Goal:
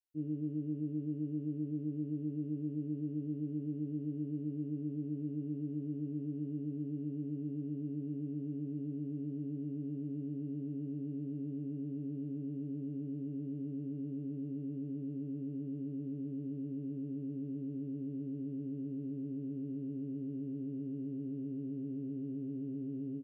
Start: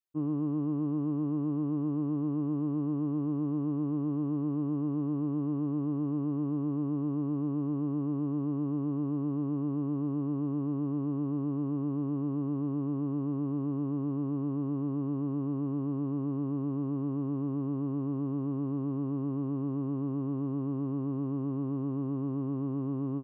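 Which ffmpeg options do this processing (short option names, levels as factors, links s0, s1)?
-filter_complex "[0:a]asuperstop=centerf=1000:order=4:qfactor=0.55,asplit=2[s0][s1];[s1]adelay=26,volume=0.501[s2];[s0][s2]amix=inputs=2:normalize=0,volume=0.422"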